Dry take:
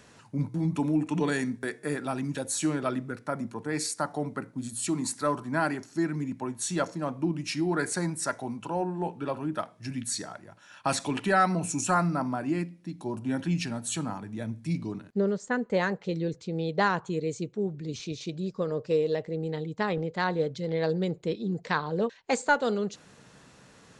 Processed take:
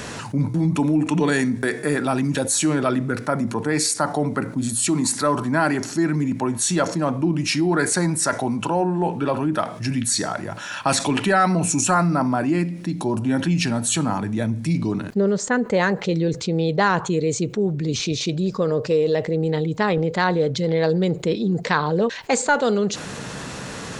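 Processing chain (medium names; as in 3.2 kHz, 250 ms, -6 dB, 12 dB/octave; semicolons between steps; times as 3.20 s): level flattener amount 50%; trim +4 dB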